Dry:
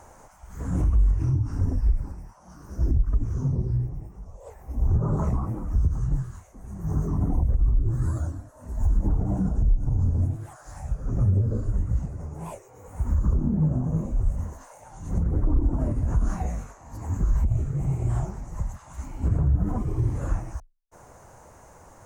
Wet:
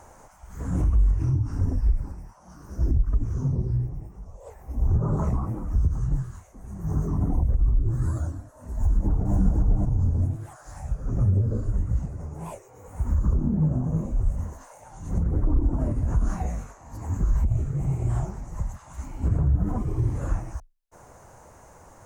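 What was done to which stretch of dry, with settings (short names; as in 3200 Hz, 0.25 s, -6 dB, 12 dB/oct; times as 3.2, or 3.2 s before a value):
8.75–9.35 echo throw 0.5 s, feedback 10%, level -1.5 dB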